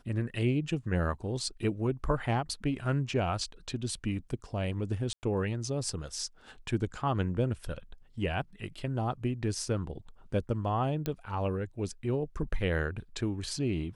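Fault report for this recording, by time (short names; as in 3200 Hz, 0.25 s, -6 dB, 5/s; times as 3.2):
5.13–5.23 gap 99 ms
11.06 pop -18 dBFS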